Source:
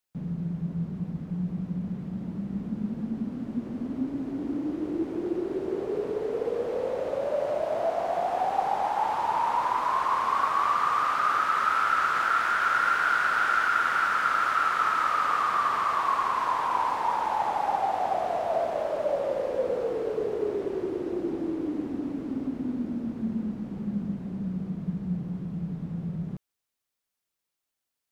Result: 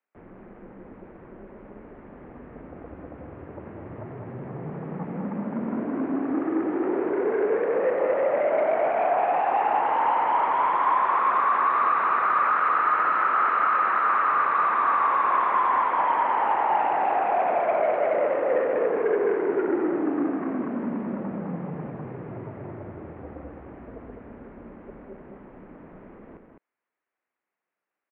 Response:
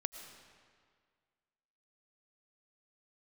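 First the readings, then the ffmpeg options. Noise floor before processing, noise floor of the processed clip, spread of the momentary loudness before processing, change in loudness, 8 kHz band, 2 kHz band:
-85 dBFS, under -85 dBFS, 10 LU, +4.5 dB, under -30 dB, -1.0 dB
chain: -filter_complex "[0:a]aeval=exprs='0.282*(cos(1*acos(clip(val(0)/0.282,-1,1)))-cos(1*PI/2))+0.0316*(cos(6*acos(clip(val(0)/0.282,-1,1)))-cos(6*PI/2))':c=same,asplit=2[a][b];[b]aeval=exprs='0.266*sin(PI/2*3.55*val(0)/0.266)':c=same,volume=-10.5dB[c];[a][c]amix=inputs=2:normalize=0,aecho=1:1:90.38|207:0.316|0.562,highpass=f=420:t=q:w=0.5412,highpass=f=420:t=q:w=1.307,lowpass=f=2.4k:t=q:w=0.5176,lowpass=f=2.4k:t=q:w=0.7071,lowpass=f=2.4k:t=q:w=1.932,afreqshift=-150,volume=-3dB"

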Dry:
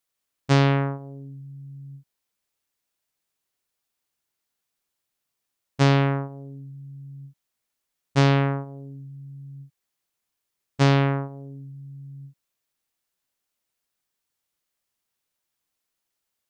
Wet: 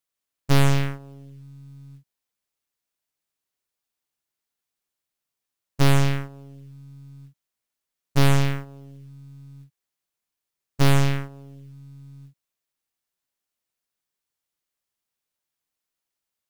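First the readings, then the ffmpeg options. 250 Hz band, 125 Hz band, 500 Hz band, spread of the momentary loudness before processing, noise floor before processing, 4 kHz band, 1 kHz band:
-1.5 dB, +0.5 dB, -3.0 dB, 21 LU, -82 dBFS, +1.5 dB, -2.5 dB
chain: -af "aeval=exprs='0.422*(cos(1*acos(clip(val(0)/0.422,-1,1)))-cos(1*PI/2))+0.211*(cos(6*acos(clip(val(0)/0.422,-1,1)))-cos(6*PI/2))':c=same,acrusher=bits=6:mode=log:mix=0:aa=0.000001,volume=-4dB"

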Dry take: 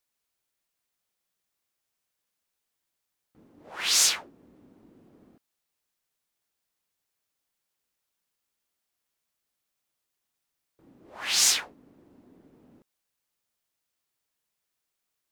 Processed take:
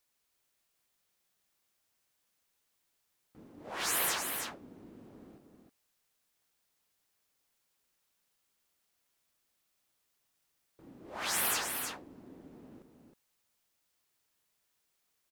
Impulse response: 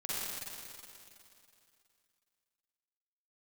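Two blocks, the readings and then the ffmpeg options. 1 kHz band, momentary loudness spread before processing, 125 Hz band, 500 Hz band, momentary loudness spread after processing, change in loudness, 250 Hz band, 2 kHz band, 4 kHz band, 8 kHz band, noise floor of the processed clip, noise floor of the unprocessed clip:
+2.0 dB, 13 LU, n/a, +4.0 dB, 19 LU, -9.5 dB, +4.0 dB, -3.5 dB, -12.0 dB, -10.0 dB, -79 dBFS, -83 dBFS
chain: -af "afftfilt=real='re*lt(hypot(re,im),0.0501)':imag='im*lt(hypot(re,im),0.0501)':win_size=1024:overlap=0.75,aecho=1:1:316:0.501,volume=3dB"

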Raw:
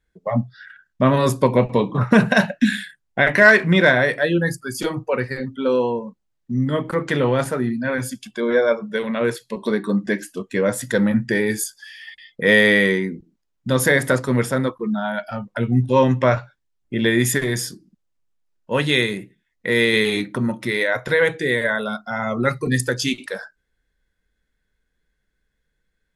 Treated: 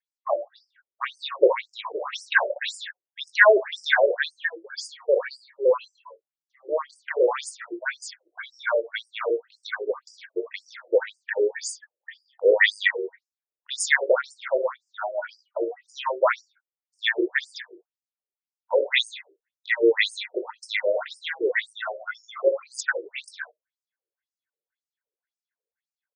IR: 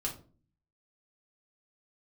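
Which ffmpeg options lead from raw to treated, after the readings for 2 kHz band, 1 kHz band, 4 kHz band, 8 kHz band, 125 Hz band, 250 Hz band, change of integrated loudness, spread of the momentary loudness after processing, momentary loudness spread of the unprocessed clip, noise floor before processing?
-5.5 dB, -5.0 dB, -4.0 dB, -7.0 dB, under -40 dB, -17.5 dB, -5.5 dB, 16 LU, 13 LU, -74 dBFS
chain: -filter_complex "[0:a]agate=range=-12dB:threshold=-37dB:ratio=16:detection=peak,asplit=2[a][b];[b]aecho=0:1:20|63|78:0.335|0.355|0.224[c];[a][c]amix=inputs=2:normalize=0,afftfilt=real='re*between(b*sr/1024,440*pow(6800/440,0.5+0.5*sin(2*PI*1.9*pts/sr))/1.41,440*pow(6800/440,0.5+0.5*sin(2*PI*1.9*pts/sr))*1.41)':imag='im*between(b*sr/1024,440*pow(6800/440,0.5+0.5*sin(2*PI*1.9*pts/sr))/1.41,440*pow(6800/440,0.5+0.5*sin(2*PI*1.9*pts/sr))*1.41)':win_size=1024:overlap=0.75,volume=2dB"

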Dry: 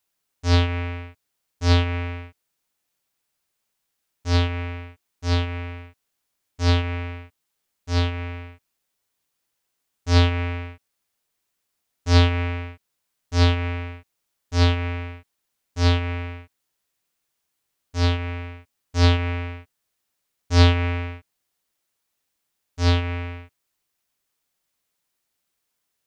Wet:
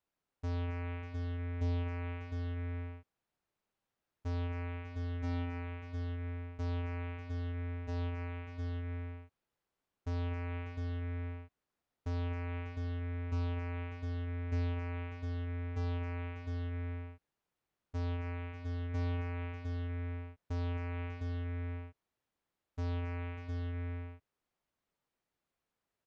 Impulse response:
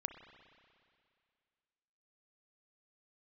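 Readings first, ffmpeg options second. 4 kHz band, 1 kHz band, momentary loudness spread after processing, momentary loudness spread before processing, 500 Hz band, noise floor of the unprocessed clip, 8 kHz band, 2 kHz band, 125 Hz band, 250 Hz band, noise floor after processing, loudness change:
-26.0 dB, -16.5 dB, 7 LU, 18 LU, -14.5 dB, -78 dBFS, n/a, -16.5 dB, -13.0 dB, -13.0 dB, under -85 dBFS, -16.5 dB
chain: -filter_complex "[0:a]acompressor=threshold=-33dB:ratio=2,lowpass=f=1k:p=1,alimiter=level_in=7.5dB:limit=-24dB:level=0:latency=1,volume=-7.5dB,asplit=2[a][b];[b]aecho=0:1:269|593|707:0.251|0.251|0.562[c];[a][c]amix=inputs=2:normalize=0,volume=-2.5dB"

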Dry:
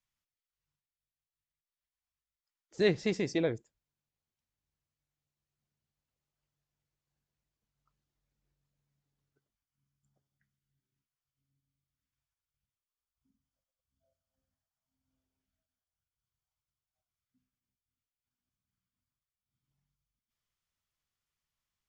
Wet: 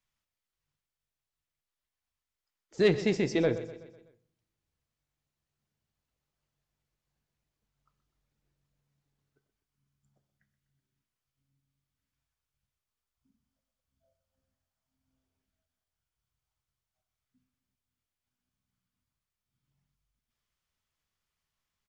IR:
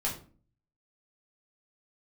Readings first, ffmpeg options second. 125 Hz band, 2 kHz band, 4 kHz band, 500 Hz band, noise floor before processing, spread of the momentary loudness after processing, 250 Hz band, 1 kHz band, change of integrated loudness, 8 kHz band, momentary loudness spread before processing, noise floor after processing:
+4.0 dB, +2.5 dB, +2.0 dB, +3.5 dB, under -85 dBFS, 11 LU, +3.5 dB, +4.0 dB, +3.0 dB, n/a, 6 LU, under -85 dBFS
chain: -filter_complex "[0:a]highshelf=f=6.6k:g=-5,asoftclip=type=tanh:threshold=-18.5dB,aecho=1:1:125|250|375|500|625:0.178|0.0925|0.0481|0.025|0.013,asplit=2[a][b];[1:a]atrim=start_sample=2205,asetrate=23373,aresample=44100[c];[b][c]afir=irnorm=-1:irlink=0,volume=-23dB[d];[a][d]amix=inputs=2:normalize=0,volume=3.5dB"

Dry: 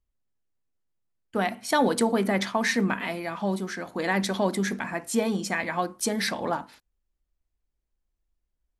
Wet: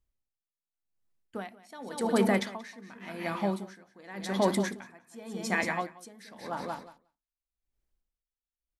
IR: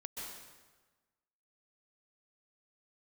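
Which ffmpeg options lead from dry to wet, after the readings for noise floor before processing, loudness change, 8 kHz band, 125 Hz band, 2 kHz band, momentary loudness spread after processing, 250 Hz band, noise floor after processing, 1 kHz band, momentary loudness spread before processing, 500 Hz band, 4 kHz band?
-81 dBFS, -4.5 dB, -9.5 dB, -5.0 dB, -6.5 dB, 19 LU, -5.5 dB, under -85 dBFS, -6.5 dB, 8 LU, -5.0 dB, -8.5 dB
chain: -af "aecho=1:1:181|362|543:0.376|0.0977|0.0254,aeval=exprs='val(0)*pow(10,-25*(0.5-0.5*cos(2*PI*0.89*n/s))/20)':c=same"

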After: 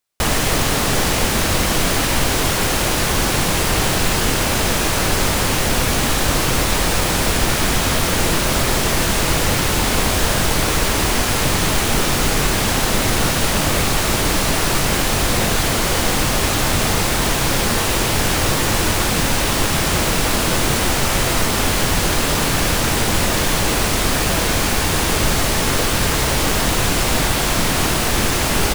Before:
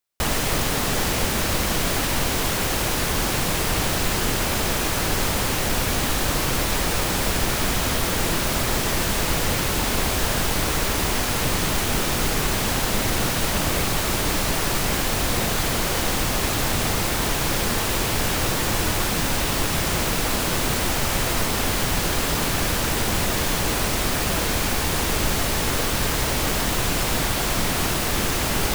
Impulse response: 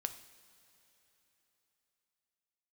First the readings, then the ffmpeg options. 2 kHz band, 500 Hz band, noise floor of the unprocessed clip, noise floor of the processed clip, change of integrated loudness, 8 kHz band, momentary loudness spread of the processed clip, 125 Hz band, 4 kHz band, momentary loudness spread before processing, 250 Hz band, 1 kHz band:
+5.5 dB, +5.5 dB, -24 dBFS, -19 dBFS, +5.0 dB, +5.5 dB, 0 LU, +5.5 dB, +5.5 dB, 0 LU, +5.5 dB, +5.5 dB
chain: -filter_complex "[0:a]asplit=2[a][b];[b]adelay=22,volume=-14dB[c];[a][c]amix=inputs=2:normalize=0,asplit=2[d][e];[1:a]atrim=start_sample=2205,asetrate=22491,aresample=44100[f];[e][f]afir=irnorm=-1:irlink=0,volume=-4.5dB[g];[d][g]amix=inputs=2:normalize=0"

